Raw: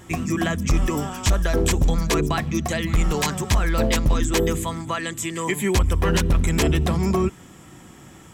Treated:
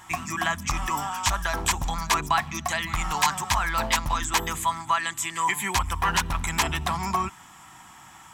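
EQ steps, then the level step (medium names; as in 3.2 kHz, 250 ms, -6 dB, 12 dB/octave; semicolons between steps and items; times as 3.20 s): resonant low shelf 650 Hz -11 dB, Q 3; 0.0 dB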